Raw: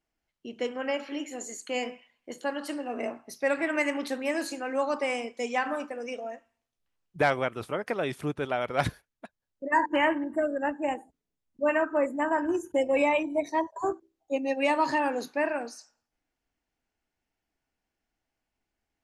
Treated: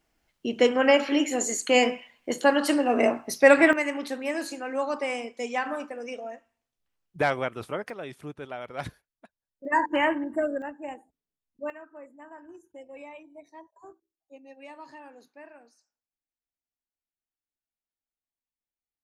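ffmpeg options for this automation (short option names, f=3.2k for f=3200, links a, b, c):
-af "asetnsamples=n=441:p=0,asendcmd='3.73 volume volume -0.5dB;7.9 volume volume -8dB;9.65 volume volume 0.5dB;10.62 volume volume -8dB;11.7 volume volume -20dB',volume=11dB"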